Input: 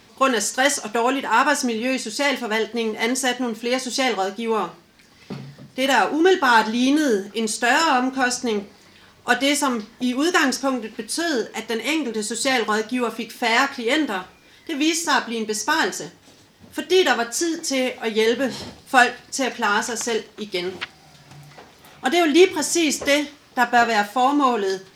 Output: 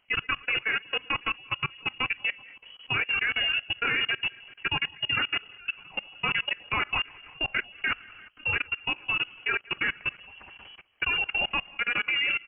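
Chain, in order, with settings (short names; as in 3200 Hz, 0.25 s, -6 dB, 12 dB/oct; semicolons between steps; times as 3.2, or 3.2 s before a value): regenerating reverse delay 0.185 s, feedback 58%, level -10 dB; notches 60/120/180/240/300 Hz; tempo 2×; inverted band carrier 3100 Hz; level quantiser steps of 22 dB; gain -4 dB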